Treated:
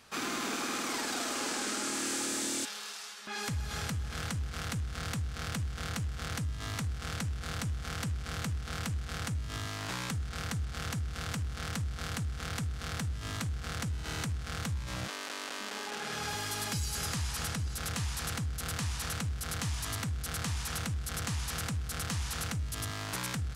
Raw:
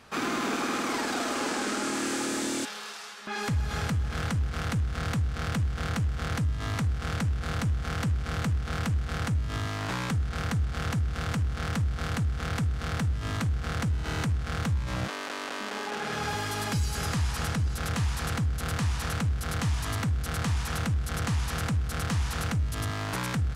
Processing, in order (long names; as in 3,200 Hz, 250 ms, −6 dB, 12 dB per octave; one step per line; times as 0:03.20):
high-shelf EQ 2,900 Hz +10 dB
level −7.5 dB